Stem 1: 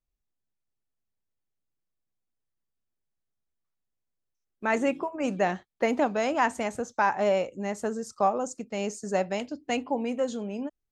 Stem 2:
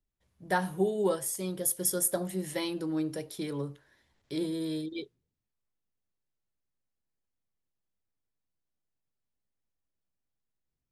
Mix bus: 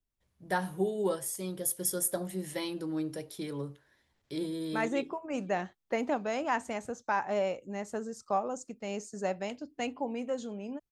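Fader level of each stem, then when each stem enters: -6.0, -2.5 dB; 0.10, 0.00 s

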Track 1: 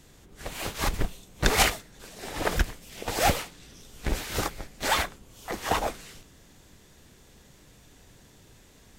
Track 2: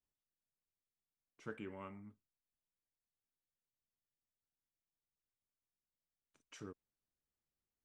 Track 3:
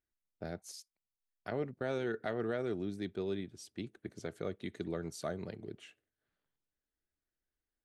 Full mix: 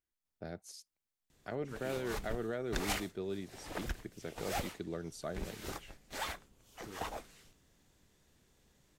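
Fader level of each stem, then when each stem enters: -14.5, -1.0, -2.5 dB; 1.30, 0.25, 0.00 s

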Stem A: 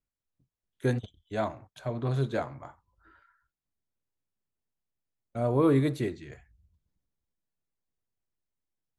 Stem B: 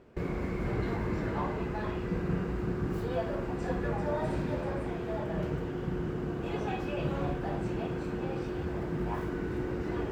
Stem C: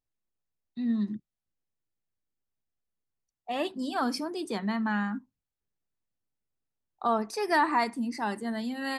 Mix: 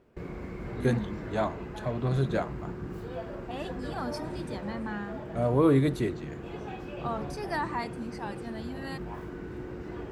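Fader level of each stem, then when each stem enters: +1.0, -5.5, -7.5 dB; 0.00, 0.00, 0.00 s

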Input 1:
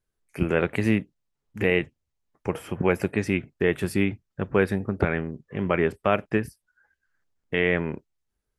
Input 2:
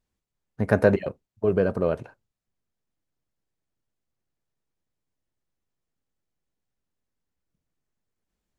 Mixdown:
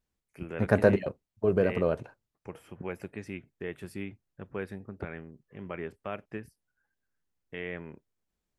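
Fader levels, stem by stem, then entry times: -15.0, -3.0 dB; 0.00, 0.00 s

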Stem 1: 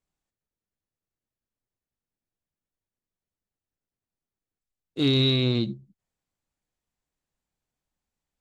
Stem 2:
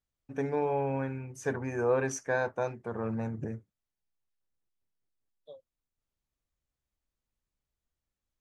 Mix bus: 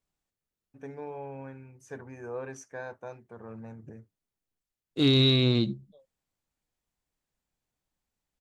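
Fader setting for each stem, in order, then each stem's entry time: 0.0, -10.0 dB; 0.00, 0.45 s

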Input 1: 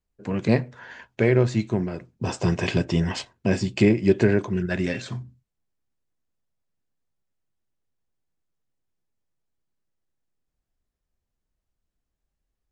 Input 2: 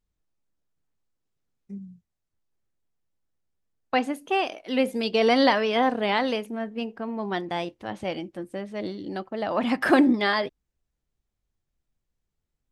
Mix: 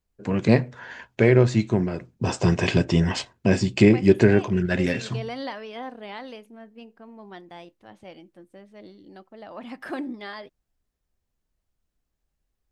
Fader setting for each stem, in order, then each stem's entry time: +2.5, -13.5 dB; 0.00, 0.00 s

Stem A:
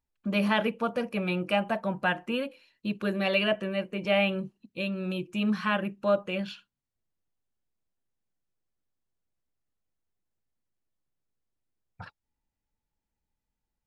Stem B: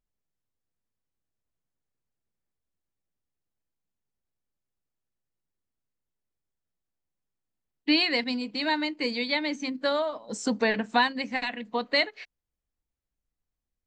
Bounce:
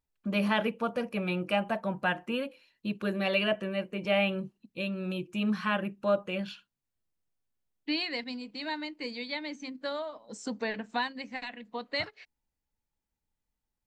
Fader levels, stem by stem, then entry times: -2.0, -8.5 dB; 0.00, 0.00 s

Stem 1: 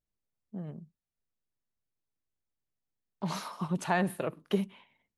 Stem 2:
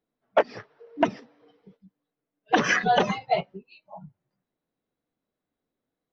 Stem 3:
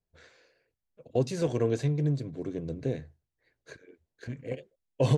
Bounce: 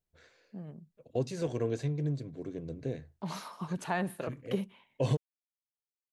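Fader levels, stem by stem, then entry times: -4.0 dB, off, -5.0 dB; 0.00 s, off, 0.00 s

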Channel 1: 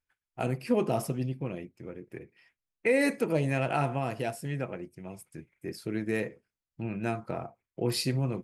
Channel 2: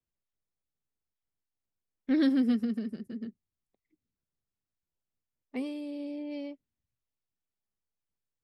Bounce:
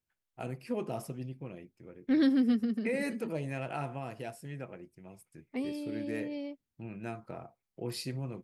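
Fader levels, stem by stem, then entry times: -8.5, -0.5 dB; 0.00, 0.00 s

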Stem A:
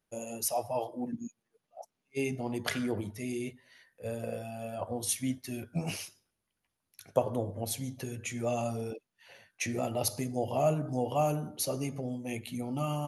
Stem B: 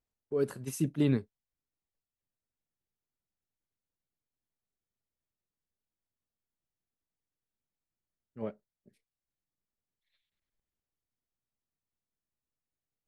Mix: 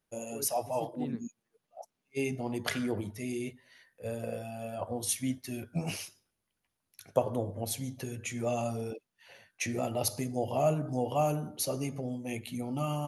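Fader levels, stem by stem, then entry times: 0.0, -13.5 dB; 0.00, 0.00 s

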